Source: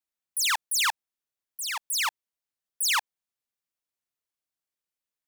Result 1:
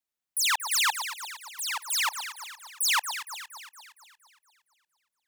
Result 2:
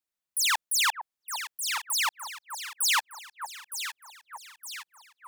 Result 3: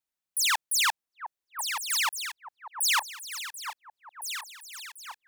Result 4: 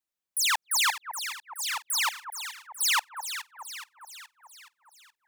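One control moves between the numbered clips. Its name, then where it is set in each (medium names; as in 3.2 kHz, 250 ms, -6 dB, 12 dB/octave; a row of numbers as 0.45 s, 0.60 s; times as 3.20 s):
echo whose repeats swap between lows and highs, time: 116 ms, 457 ms, 707 ms, 211 ms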